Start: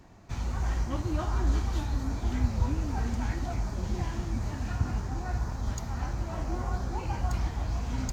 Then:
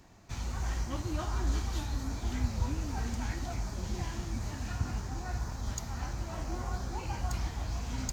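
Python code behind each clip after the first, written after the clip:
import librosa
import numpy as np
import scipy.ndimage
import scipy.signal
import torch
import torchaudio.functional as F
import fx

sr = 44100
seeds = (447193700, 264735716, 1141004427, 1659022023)

y = fx.high_shelf(x, sr, hz=2400.0, db=8.0)
y = y * librosa.db_to_amplitude(-4.5)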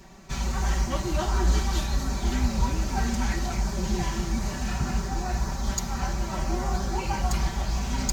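y = x + 0.91 * np.pad(x, (int(5.2 * sr / 1000.0), 0))[:len(x)]
y = y * librosa.db_to_amplitude(7.0)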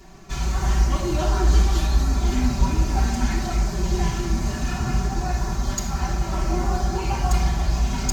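y = fx.room_shoebox(x, sr, seeds[0], volume_m3=3200.0, walls='furnished', distance_m=3.2)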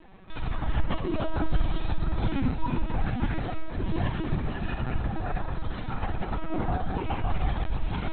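y = fx.lpc_vocoder(x, sr, seeds[1], excitation='pitch_kept', order=16)
y = y * librosa.db_to_amplitude(-5.0)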